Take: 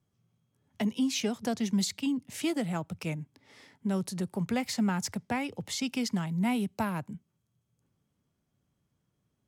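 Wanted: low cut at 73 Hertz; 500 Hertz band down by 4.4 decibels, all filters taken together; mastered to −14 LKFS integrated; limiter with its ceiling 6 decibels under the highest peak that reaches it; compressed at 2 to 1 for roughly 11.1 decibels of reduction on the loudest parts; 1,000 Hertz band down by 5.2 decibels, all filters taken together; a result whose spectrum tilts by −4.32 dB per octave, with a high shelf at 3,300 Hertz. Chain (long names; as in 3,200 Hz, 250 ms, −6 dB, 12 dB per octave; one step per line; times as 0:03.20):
high-pass filter 73 Hz
parametric band 500 Hz −4.5 dB
parametric band 1,000 Hz −5.5 dB
high-shelf EQ 3,300 Hz +3.5 dB
downward compressor 2 to 1, threshold −46 dBFS
level +29 dB
brickwall limiter −4.5 dBFS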